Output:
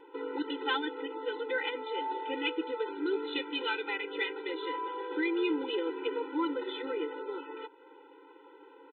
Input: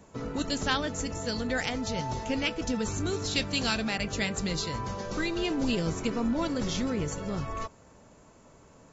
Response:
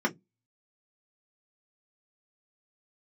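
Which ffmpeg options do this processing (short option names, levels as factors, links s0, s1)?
-filter_complex "[0:a]asplit=2[s0][s1];[s1]acompressor=threshold=0.00708:ratio=6,volume=1[s2];[s0][s2]amix=inputs=2:normalize=0,aresample=8000,aresample=44100,afftfilt=real='re*eq(mod(floor(b*sr/1024/260),2),1)':imag='im*eq(mod(floor(b*sr/1024/260),2),1)':win_size=1024:overlap=0.75"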